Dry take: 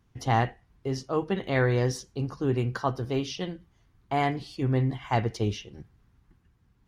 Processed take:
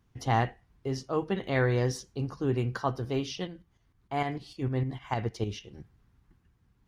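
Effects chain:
0:03.47–0:05.64: shaped tremolo saw up 6.6 Hz, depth 60%
level −2 dB

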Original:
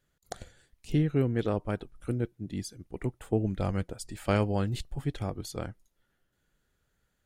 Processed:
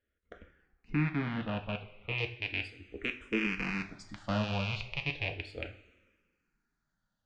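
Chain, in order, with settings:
loose part that buzzes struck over −35 dBFS, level −14 dBFS
low-pass filter 3,100 Hz 24 dB per octave, from 0:02.18 5,800 Hz
coupled-rooms reverb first 0.37 s, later 1.7 s, from −16 dB, DRR 4.5 dB
frequency shifter mixed with the dry sound −0.35 Hz
level −5 dB

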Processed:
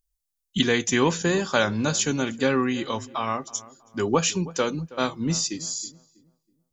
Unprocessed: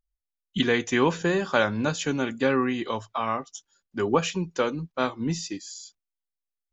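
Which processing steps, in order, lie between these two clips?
bass and treble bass +3 dB, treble +12 dB
on a send: feedback echo with a low-pass in the loop 323 ms, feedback 34%, low-pass 1,400 Hz, level −18 dB

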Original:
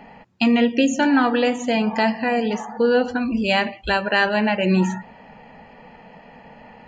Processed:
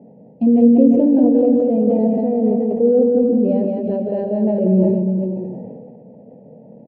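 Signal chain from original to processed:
elliptic band-pass filter 110–560 Hz, stop band 40 dB
bouncing-ball delay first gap 190 ms, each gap 0.85×, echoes 5
level that may fall only so fast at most 29 dB per second
level +3.5 dB

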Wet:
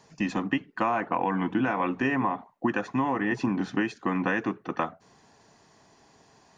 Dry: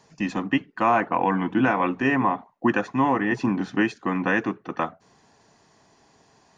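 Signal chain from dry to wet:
downward compressor, threshold −22 dBFS, peak gain reduction 7.5 dB

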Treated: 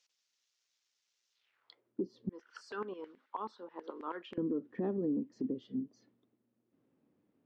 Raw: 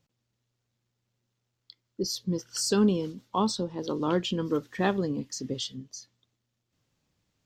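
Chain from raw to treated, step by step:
band-pass filter sweep 5,900 Hz → 250 Hz, 0:01.32–0:01.93
bass and treble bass −7 dB, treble −15 dB
0:02.29–0:04.38: auto-filter high-pass saw down 9.3 Hz 980–2,000 Hz
downward compressor 3 to 1, threshold −45 dBFS, peak gain reduction 11 dB
parametric band 410 Hz +4.5 dB 1 octave
brickwall limiter −37 dBFS, peak gain reduction 6 dB
one half of a high-frequency compander encoder only
level +10.5 dB

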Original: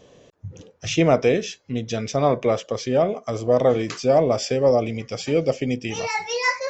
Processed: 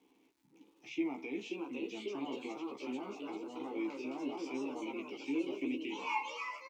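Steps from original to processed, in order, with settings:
high-pass filter 170 Hz 24 dB per octave
spectral tilt +1.5 dB per octave
brickwall limiter −16 dBFS, peak gain reduction 9 dB
formant filter u
surface crackle 250 per second −62 dBFS
delay with pitch and tempo change per echo 639 ms, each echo +2 semitones, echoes 2
double-tracking delay 15 ms −3.5 dB
on a send: feedback echo with a low-pass in the loop 183 ms, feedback 41%, level −18 dB
on the sum: level −3.5 dB

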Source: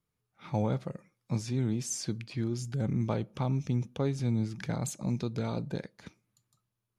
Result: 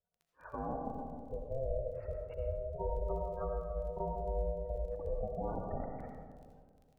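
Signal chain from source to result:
0:02.78–0:04.89: channel vocoder with a chord as carrier bare fifth, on A3
low-pass filter 1,700 Hz 24 dB per octave
gate on every frequency bin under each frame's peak −15 dB strong
high-pass filter 240 Hz 24 dB per octave
brickwall limiter −30 dBFS, peak gain reduction 8 dB
surface crackle 25 per second −55 dBFS
ring modulation 270 Hz
comb and all-pass reverb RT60 2 s, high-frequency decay 0.25×, pre-delay 40 ms, DRR 2 dB
level +3 dB

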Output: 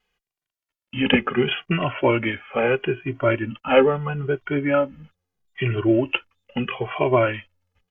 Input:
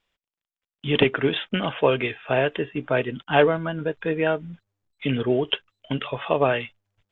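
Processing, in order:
speed change −10%
barber-pole flanger 2 ms −0.76 Hz
level +5 dB

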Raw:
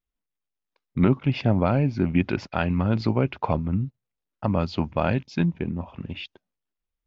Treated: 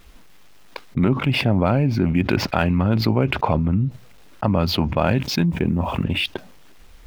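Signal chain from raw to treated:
running median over 5 samples
0:05.10–0:06.04: bit-depth reduction 12 bits, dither none
envelope flattener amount 70%

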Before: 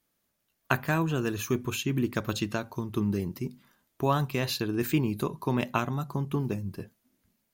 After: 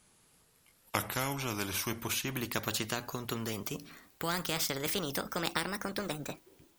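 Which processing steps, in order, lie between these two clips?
gliding playback speed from 69% → 153%
every bin compressed towards the loudest bin 2 to 1
level −4.5 dB

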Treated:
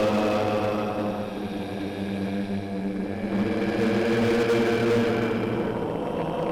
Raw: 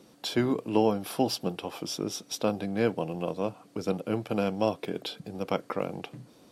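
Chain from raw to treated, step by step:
extreme stretch with random phases 12×, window 0.25 s, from 0:02.46
harmonic generator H 4 −16 dB, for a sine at −21.5 dBFS
level +3.5 dB

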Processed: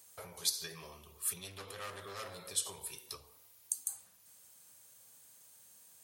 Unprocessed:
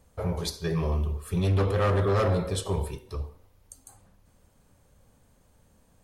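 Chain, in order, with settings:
downward compressor 6 to 1, threshold −35 dBFS, peak gain reduction 13 dB
high-pass filter 88 Hz 24 dB per octave
first-order pre-emphasis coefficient 0.97
level +11.5 dB

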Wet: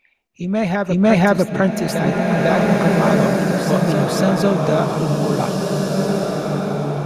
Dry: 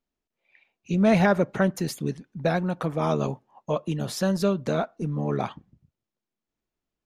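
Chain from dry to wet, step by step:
on a send: backwards echo 500 ms −5.5 dB
on the sum: slow-attack reverb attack 1,820 ms, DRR −0.5 dB
level +5.5 dB

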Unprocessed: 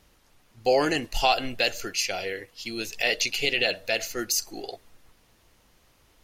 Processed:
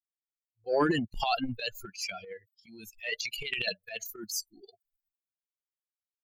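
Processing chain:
spectral dynamics exaggerated over time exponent 3
transient designer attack −9 dB, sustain +12 dB
level −1.5 dB

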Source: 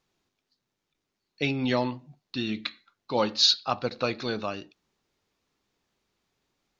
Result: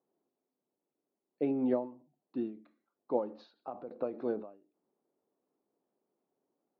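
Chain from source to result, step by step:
flat-topped band-pass 430 Hz, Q 0.82
every ending faded ahead of time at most 130 dB per second

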